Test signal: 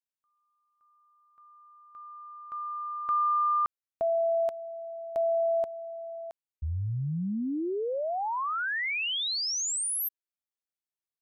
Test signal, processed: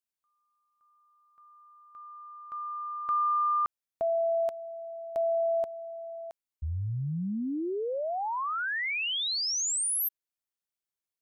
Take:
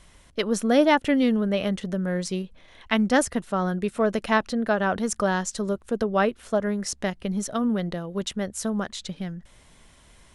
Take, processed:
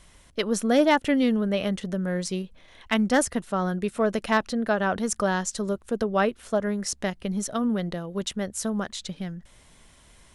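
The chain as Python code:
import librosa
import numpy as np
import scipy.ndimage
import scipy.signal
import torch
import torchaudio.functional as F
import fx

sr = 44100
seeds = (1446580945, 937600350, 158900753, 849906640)

y = fx.high_shelf(x, sr, hz=5300.0, db=3.0)
y = np.clip(10.0 ** (10.5 / 20.0) * y, -1.0, 1.0) / 10.0 ** (10.5 / 20.0)
y = F.gain(torch.from_numpy(y), -1.0).numpy()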